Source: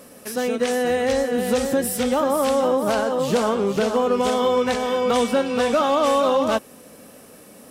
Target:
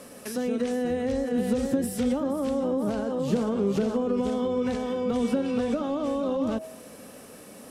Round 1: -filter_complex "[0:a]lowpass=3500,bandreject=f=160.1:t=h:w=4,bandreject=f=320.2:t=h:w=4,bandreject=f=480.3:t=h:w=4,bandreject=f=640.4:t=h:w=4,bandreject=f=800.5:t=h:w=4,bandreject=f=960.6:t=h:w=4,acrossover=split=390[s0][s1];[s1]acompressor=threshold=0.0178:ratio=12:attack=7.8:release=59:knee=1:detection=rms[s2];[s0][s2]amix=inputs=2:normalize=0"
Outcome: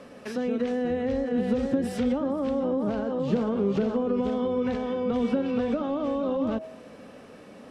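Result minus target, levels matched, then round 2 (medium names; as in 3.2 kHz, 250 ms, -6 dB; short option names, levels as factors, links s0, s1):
8 kHz band -11.0 dB
-filter_complex "[0:a]lowpass=12000,bandreject=f=160.1:t=h:w=4,bandreject=f=320.2:t=h:w=4,bandreject=f=480.3:t=h:w=4,bandreject=f=640.4:t=h:w=4,bandreject=f=800.5:t=h:w=4,bandreject=f=960.6:t=h:w=4,acrossover=split=390[s0][s1];[s1]acompressor=threshold=0.0178:ratio=12:attack=7.8:release=59:knee=1:detection=rms[s2];[s0][s2]amix=inputs=2:normalize=0"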